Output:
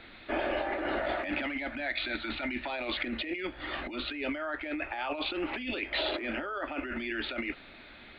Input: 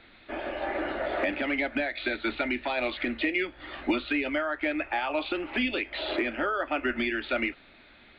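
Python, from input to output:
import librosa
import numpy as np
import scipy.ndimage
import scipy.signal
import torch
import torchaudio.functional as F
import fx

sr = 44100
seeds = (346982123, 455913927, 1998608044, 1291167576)

y = fx.peak_eq(x, sr, hz=450.0, db=-11.0, octaves=0.41, at=(1.0, 2.64))
y = fx.over_compress(y, sr, threshold_db=-34.0, ratio=-1.0)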